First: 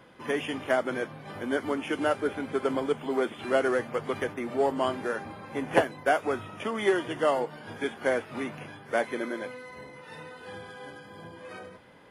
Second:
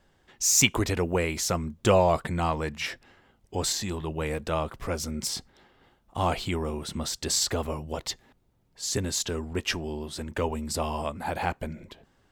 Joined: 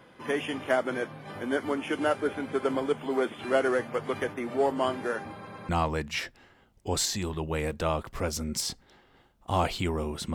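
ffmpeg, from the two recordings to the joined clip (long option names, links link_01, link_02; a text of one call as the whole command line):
ffmpeg -i cue0.wav -i cue1.wav -filter_complex "[0:a]apad=whole_dur=10.34,atrim=end=10.34,asplit=3[link_01][link_02][link_03];[link_01]atrim=end=5.472[link_04];[link_02]atrim=start=5.358:end=5.472[link_05];[link_03]atrim=start=5.358:end=5.472[link_06];[1:a]atrim=start=2.358:end=7.01[link_07];[link_04][link_05]acrossfade=duration=0.004:curve1=hsin:curve2=hsin[link_08];[link_08][link_06]acrossfade=duration=0.004:curve1=hsin:curve2=hsin[link_09];[link_09][link_07]acrossfade=duration=0.004:curve1=hsin:curve2=hsin" out.wav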